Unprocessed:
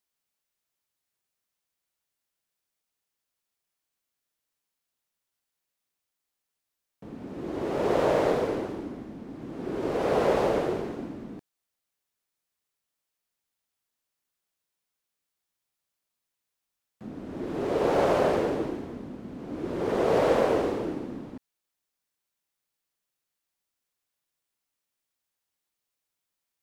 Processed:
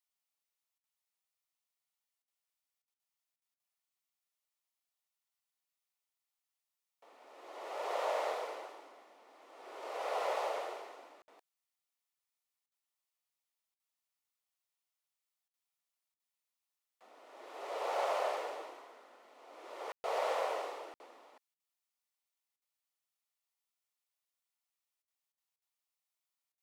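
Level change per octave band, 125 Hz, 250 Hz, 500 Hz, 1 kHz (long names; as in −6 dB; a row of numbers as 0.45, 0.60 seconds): below −40 dB, −29.5 dB, −13.5 dB, −7.0 dB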